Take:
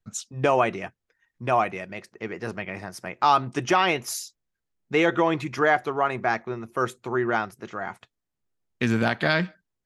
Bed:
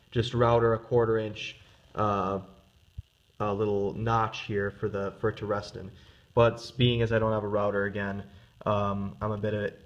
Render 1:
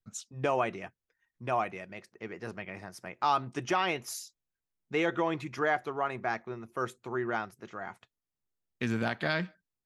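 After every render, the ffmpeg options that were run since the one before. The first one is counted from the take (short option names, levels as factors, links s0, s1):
-af "volume=0.398"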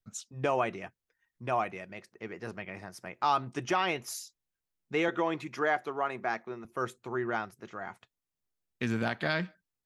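-filter_complex "[0:a]asettb=1/sr,asplit=3[s0][s1][s2];[s0]atrim=end=5.084[s3];[s1]atrim=start=5.08:end=6.65,asetpts=PTS-STARTPTS,afade=t=in:d=0.004:c=qsin,afade=t=out:st=1.566:d=0.004:c=qsin,highpass=170[s4];[s2]atrim=start=6.646[s5];[s3][s4]acrossfade=d=0.004:c1=hsin:c2=qsin[s6];[s6][s5]acrossfade=d=0.004:c1=qsin:c2=hsin"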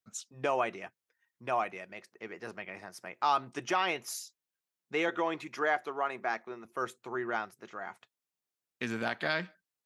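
-af "highpass=f=360:p=1"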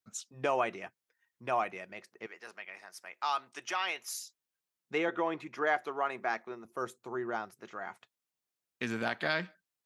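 -filter_complex "[0:a]asettb=1/sr,asplit=3[s0][s1][s2];[s0]atrim=end=2.264[s3];[s1]atrim=start=2.26:end=4.22,asetpts=PTS-STARTPTS,afade=t=in:d=0.004:c=qsin,afade=t=out:st=1.956:d=0.004:c=qsin,highpass=f=1400:p=1[s4];[s2]atrim=start=4.216[s5];[s3][s4]acrossfade=d=0.004:c1=hsin:c2=qsin[s6];[s6][s5]acrossfade=d=0.004:c1=qsin:c2=hsin,asettb=1/sr,asplit=3[s7][s8][s9];[s7]atrim=end=4.984[s10];[s8]atrim=start=4.98:end=5.67,asetpts=PTS-STARTPTS,afade=t=in:d=0.004:c=qsin,afade=t=out:st=0.686:d=0.004:c=qsin,highshelf=f=3000:g=-9.5[s11];[s9]atrim=start=5.666[s12];[s10][s11]acrossfade=d=0.004:c1=hsin:c2=qsin[s13];[s13][s12]acrossfade=d=0.004:c1=qsin:c2=hsin,asettb=1/sr,asplit=3[s14][s15][s16];[s14]atrim=end=6.554[s17];[s15]atrim=start=6.55:end=7.5,asetpts=PTS-STARTPTS,afade=t=in:d=0.004:c=qsin,afade=t=out:st=0.946:d=0.004:c=qsin,equalizer=f=2300:w=0.87:g=-7.5[s18];[s16]atrim=start=7.496[s19];[s17][s18]acrossfade=d=0.004:c1=hsin:c2=qsin[s20];[s20][s19]acrossfade=d=0.004:c1=qsin:c2=hsin"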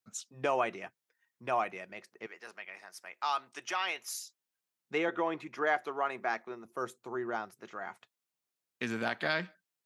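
-af "highpass=85"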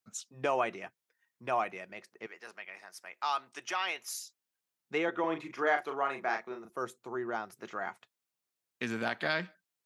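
-filter_complex "[0:a]asettb=1/sr,asplit=3[s0][s1][s2];[s0]atrim=end=5.204[s3];[s1]atrim=start=5.2:end=6.7,asetpts=PTS-STARTPTS,afade=t=in:d=0.004:c=qsin,afade=t=out:st=1.496:d=0.004:c=qsin,asplit=2[s4][s5];[s5]adelay=37,volume=0.501[s6];[s4][s6]amix=inputs=2:normalize=0,atrim=end_sample=66150[s7];[s2]atrim=start=6.696[s8];[s3][s7]acrossfade=d=0.004:c1=hsin:c2=qsin[s9];[s9][s8]acrossfade=d=0.004:c1=qsin:c2=hsin,asplit=3[s10][s11][s12];[s10]atrim=end=7.502[s13];[s11]atrim=start=7.498:end=7.902,asetpts=PTS-STARTPTS,volume=1.58[s14];[s12]atrim=start=7.898[s15];[s13][s14]acrossfade=d=0.004:c1=hsin:c2=hsin[s16];[s16][s15]acrossfade=d=0.004:c1=hsin:c2=hsin"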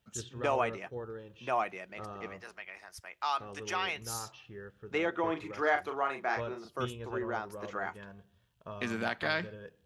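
-filter_complex "[1:a]volume=0.141[s0];[0:a][s0]amix=inputs=2:normalize=0"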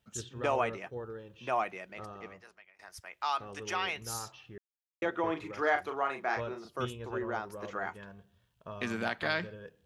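-filter_complex "[0:a]asplit=4[s0][s1][s2][s3];[s0]atrim=end=2.79,asetpts=PTS-STARTPTS,afade=t=out:st=1.89:d=0.9:silence=0.0707946[s4];[s1]atrim=start=2.79:end=4.58,asetpts=PTS-STARTPTS,afade=t=in:d=0.004:c=hsin:silence=0.0707946,afade=t=out:st=1.786:d=0.004:c=hsin[s5];[s2]atrim=start=4.58:end=5.02,asetpts=PTS-STARTPTS,volume=0[s6];[s3]atrim=start=5.02,asetpts=PTS-STARTPTS,afade=t=in:d=0.004:c=hsin[s7];[s4][s5][s6][s7]concat=n=4:v=0:a=1"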